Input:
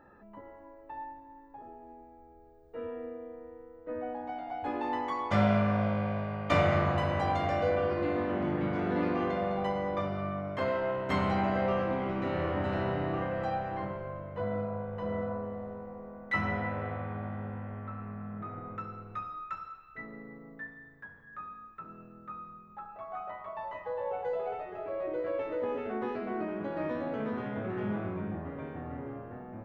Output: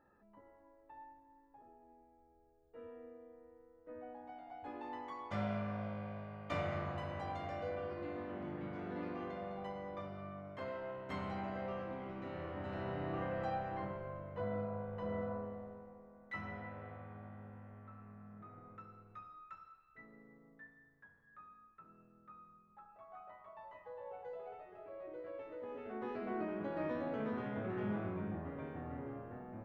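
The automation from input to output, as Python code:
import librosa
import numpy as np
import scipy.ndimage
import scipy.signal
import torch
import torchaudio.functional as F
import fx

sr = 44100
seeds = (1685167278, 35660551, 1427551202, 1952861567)

y = fx.gain(x, sr, db=fx.line((12.53, -13.0), (13.29, -6.0), (15.39, -6.0), (16.09, -14.0), (25.63, -14.0), (26.29, -5.0)))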